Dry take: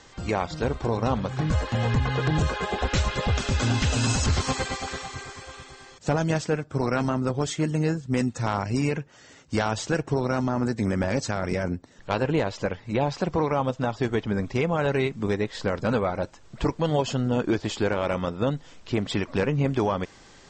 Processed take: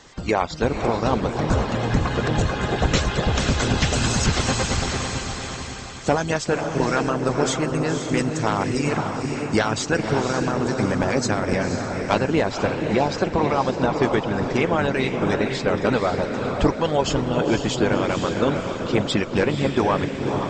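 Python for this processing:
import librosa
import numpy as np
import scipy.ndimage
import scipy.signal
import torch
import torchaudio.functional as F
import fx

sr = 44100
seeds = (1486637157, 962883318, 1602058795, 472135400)

y = fx.cheby_harmonics(x, sr, harmonics=(2,), levels_db=(-27,), full_scale_db=-12.5)
y = fx.echo_diffused(y, sr, ms=514, feedback_pct=47, wet_db=-3)
y = fx.hpss(y, sr, part='harmonic', gain_db=-11)
y = F.gain(torch.from_numpy(y), 7.0).numpy()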